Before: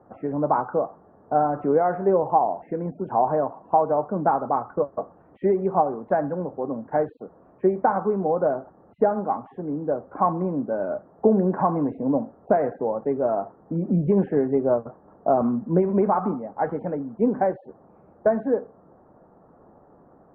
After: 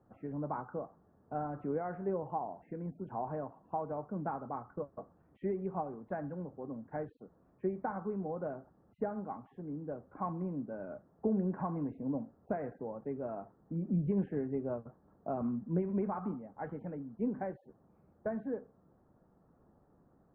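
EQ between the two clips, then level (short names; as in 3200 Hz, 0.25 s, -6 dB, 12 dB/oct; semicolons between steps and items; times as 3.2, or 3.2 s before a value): bell 700 Hz -12 dB 2.9 oct; -6.0 dB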